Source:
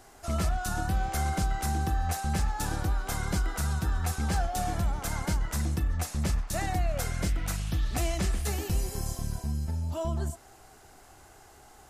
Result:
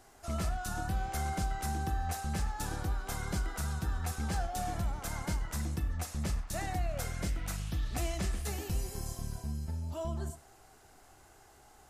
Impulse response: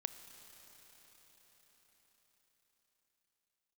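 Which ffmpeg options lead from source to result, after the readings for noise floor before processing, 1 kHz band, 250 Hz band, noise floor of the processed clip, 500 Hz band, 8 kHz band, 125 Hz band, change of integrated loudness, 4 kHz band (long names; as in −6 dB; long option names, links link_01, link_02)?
−54 dBFS, −5.0 dB, −5.5 dB, −59 dBFS, −5.0 dB, −5.0 dB, −5.5 dB, −5.5 dB, −5.0 dB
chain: -filter_complex "[1:a]atrim=start_sample=2205,atrim=end_sample=6615,asetrate=61740,aresample=44100[link_01];[0:a][link_01]afir=irnorm=-1:irlink=0"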